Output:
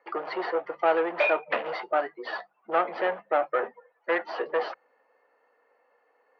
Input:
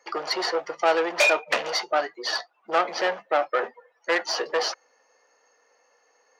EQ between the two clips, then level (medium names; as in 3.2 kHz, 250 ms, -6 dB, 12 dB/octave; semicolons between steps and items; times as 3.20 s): low-pass 4.6 kHz 12 dB/octave; distance through air 470 m; hum notches 50/100/150/200 Hz; 0.0 dB